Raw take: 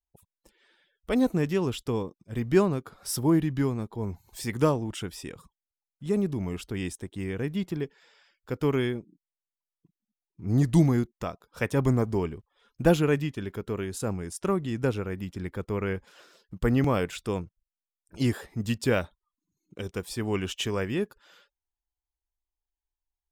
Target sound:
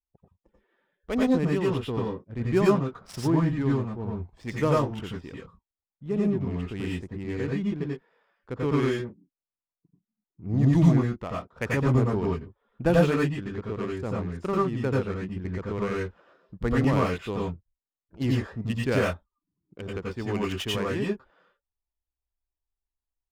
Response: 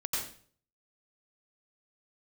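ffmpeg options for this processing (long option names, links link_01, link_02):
-filter_complex "[0:a]adynamicsmooth=sensitivity=6:basefreq=1100[link_01];[1:a]atrim=start_sample=2205,afade=type=out:start_time=0.17:duration=0.01,atrim=end_sample=7938[link_02];[link_01][link_02]afir=irnorm=-1:irlink=0,volume=-1dB"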